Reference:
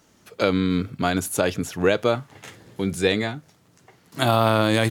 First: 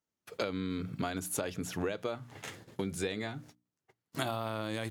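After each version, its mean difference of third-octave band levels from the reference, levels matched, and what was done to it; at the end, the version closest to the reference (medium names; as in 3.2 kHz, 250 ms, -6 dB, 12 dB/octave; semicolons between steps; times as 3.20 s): 5.0 dB: gate -47 dBFS, range -31 dB; hum notches 60/120/180/240/300 Hz; compression 10:1, threshold -29 dBFS, peak gain reduction 16 dB; trim -2 dB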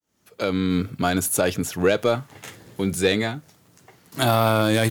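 2.5 dB: fade-in on the opening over 0.79 s; treble shelf 11 kHz +10.5 dB; saturation -9 dBFS, distortion -17 dB; trim +1.5 dB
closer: second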